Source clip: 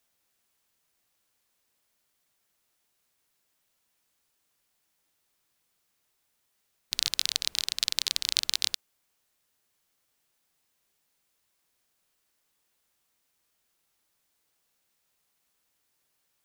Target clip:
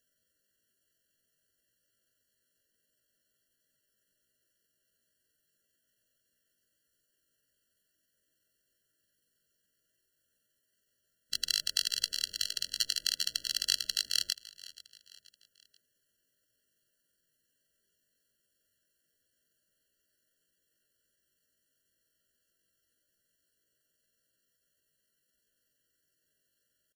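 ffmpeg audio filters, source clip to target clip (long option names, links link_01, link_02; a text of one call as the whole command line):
ffmpeg -i in.wav -filter_complex "[0:a]atempo=0.61,asplit=4[link_01][link_02][link_03][link_04];[link_02]adelay=481,afreqshift=-75,volume=-19dB[link_05];[link_03]adelay=962,afreqshift=-150,volume=-26.1dB[link_06];[link_04]adelay=1443,afreqshift=-225,volume=-33.3dB[link_07];[link_01][link_05][link_06][link_07]amix=inputs=4:normalize=0,afftfilt=real='re*eq(mod(floor(b*sr/1024/670),2),0)':imag='im*eq(mod(floor(b*sr/1024/670),2),0)':win_size=1024:overlap=0.75" out.wav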